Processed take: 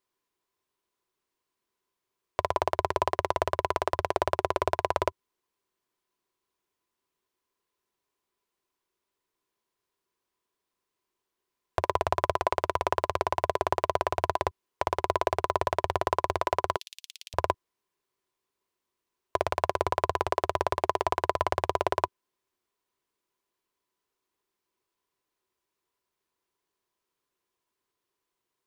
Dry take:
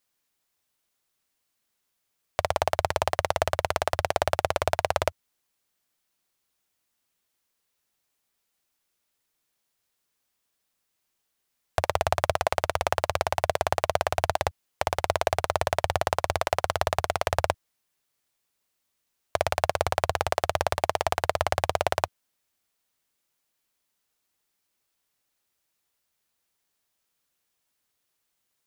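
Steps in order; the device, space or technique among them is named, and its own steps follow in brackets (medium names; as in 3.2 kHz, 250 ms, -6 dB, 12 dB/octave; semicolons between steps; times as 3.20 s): 16.76–17.34 s: steep high-pass 2.9 kHz 36 dB/octave; inside a helmet (treble shelf 5.1 kHz -7 dB; small resonant body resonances 380/1000 Hz, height 13 dB, ringing for 35 ms); trim -4.5 dB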